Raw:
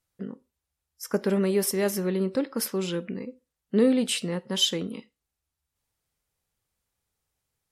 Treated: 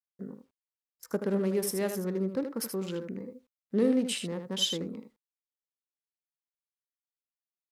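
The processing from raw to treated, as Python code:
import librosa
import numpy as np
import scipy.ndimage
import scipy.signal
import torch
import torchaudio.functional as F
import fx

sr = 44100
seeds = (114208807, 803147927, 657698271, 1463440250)

y = fx.wiener(x, sr, points=15)
y = y + 10.0 ** (-8.0 / 20.0) * np.pad(y, (int(78 * sr / 1000.0), 0))[:len(y)]
y = fx.quant_dither(y, sr, seeds[0], bits=12, dither='none')
y = y * librosa.db_to_amplitude(-5.0)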